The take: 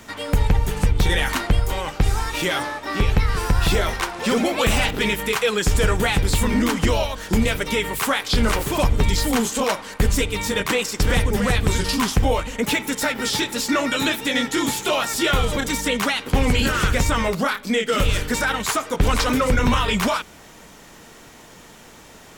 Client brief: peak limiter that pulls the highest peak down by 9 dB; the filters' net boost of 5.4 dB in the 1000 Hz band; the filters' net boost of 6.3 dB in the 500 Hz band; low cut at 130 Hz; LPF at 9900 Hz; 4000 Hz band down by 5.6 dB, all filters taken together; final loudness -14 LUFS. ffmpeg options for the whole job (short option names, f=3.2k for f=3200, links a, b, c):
-af "highpass=130,lowpass=9.9k,equalizer=f=500:t=o:g=6,equalizer=f=1k:t=o:g=5.5,equalizer=f=4k:t=o:g=-8,volume=8.5dB,alimiter=limit=-4dB:level=0:latency=1"